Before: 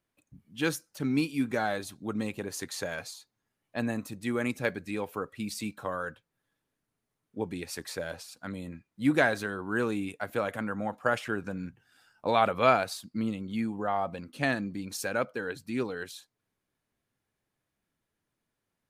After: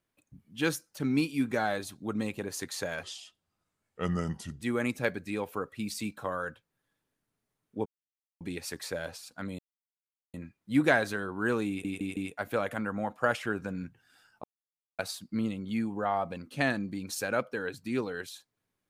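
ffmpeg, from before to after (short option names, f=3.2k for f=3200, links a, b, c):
-filter_complex "[0:a]asplit=10[a][b][c][d][e][f][g][h][i][j];[a]atrim=end=3.034[k];[b]atrim=start=3.03:end=4.22,asetpts=PTS-STARTPTS,asetrate=33075,aresample=44100[l];[c]atrim=start=4.216:end=7.46,asetpts=PTS-STARTPTS,afade=t=out:st=3.24:d=0.004:c=hsin,apad=pad_dur=0.55[m];[d]atrim=start=7.46:end=8.64,asetpts=PTS-STARTPTS,afade=t=in:d=0.004:c=hsin,afade=t=out:st=1.176:d=0.004:c=hsin,apad=pad_dur=0.75[n];[e]atrim=start=8.64:end=10.152,asetpts=PTS-STARTPTS,afade=t=in:d=0.004:c=hsin[o];[f]atrim=start=9.988:end=10.152[p];[g]atrim=start=9.988:end=10.152[q];[h]atrim=start=9.988:end=12.26,asetpts=PTS-STARTPTS,afade=t=out:st=2.268:d=0.004:c=hsin[r];[i]atrim=start=12.26:end=12.81,asetpts=PTS-STARTPTS,volume=0[s];[j]atrim=start=12.81,asetpts=PTS-STARTPTS,afade=t=in:d=0.004:c=hsin[t];[k][l]acrossfade=d=0.004:c1=hsin:c2=hsin[u];[m][n][o]concat=n=3:v=0:a=1[v];[u][v]acrossfade=d=0.004:c1=hsin:c2=hsin[w];[w][p]acrossfade=d=0.004:c1=hsin:c2=hsin[x];[x][q]acrossfade=d=0.004:c1=hsin:c2=hsin[y];[r][s][t]concat=n=3:v=0:a=1[z];[y][z]acrossfade=d=0.004:c1=hsin:c2=hsin"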